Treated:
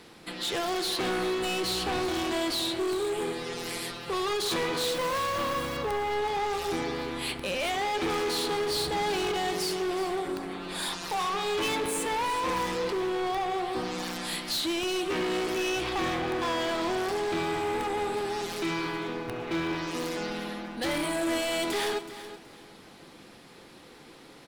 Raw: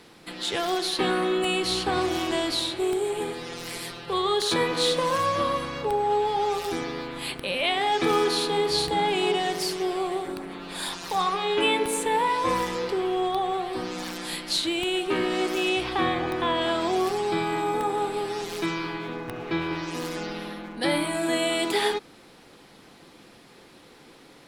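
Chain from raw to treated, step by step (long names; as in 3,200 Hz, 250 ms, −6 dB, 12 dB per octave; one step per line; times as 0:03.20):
0:04.86–0:05.77: log-companded quantiser 4 bits
0:07.51–0:08.09: high-shelf EQ 4,200 Hz −5.5 dB
gain into a clipping stage and back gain 27 dB
repeating echo 374 ms, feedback 25%, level −14 dB
convolution reverb RT60 2.0 s, pre-delay 7 ms, DRR 16 dB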